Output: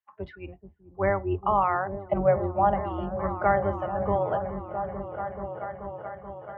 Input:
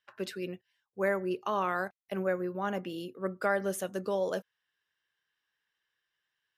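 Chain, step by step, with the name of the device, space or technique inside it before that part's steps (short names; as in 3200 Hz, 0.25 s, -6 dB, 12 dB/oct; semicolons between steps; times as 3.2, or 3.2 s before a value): spectral noise reduction 15 dB; 1.99–2.74 fifteen-band EQ 630 Hz +9 dB, 1600 Hz -4 dB, 4000 Hz +12 dB; repeats that get brighter 0.432 s, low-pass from 200 Hz, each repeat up 1 oct, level -3 dB; sub-octave bass pedal (octaver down 2 oct, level 0 dB; speaker cabinet 71–2100 Hz, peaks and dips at 80 Hz +4 dB, 120 Hz -7 dB, 250 Hz -9 dB, 490 Hz -10 dB, 820 Hz +6 dB, 1600 Hz -9 dB); gain +7.5 dB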